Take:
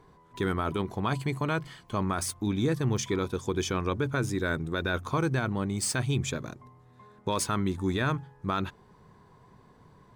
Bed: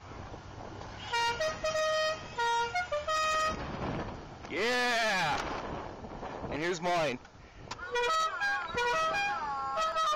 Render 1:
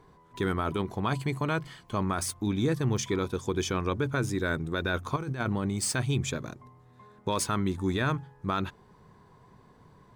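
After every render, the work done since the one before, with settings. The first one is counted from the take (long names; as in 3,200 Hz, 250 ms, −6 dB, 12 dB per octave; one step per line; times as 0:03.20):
0:05.16–0:05.70: compressor whose output falls as the input rises −30 dBFS, ratio −0.5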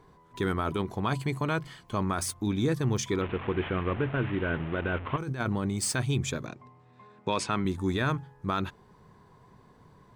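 0:03.21–0:05.18: linear delta modulator 16 kbit/s, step −32.5 dBFS
0:06.46–0:07.65: loudspeaker in its box 110–7,800 Hz, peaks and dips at 740 Hz +3 dB, 2,500 Hz +7 dB, 6,500 Hz −5 dB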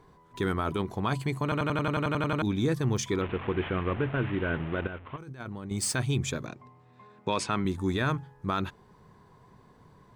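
0:01.43: stutter in place 0.09 s, 11 plays
0:04.87–0:05.71: clip gain −9.5 dB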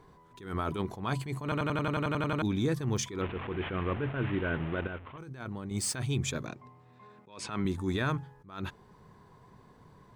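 brickwall limiter −21 dBFS, peak gain reduction 7.5 dB
level that may rise only so fast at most 110 dB per second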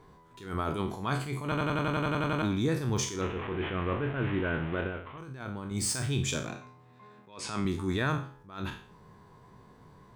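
peak hold with a decay on every bin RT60 0.45 s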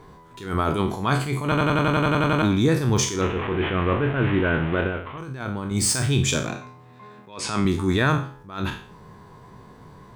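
level +9 dB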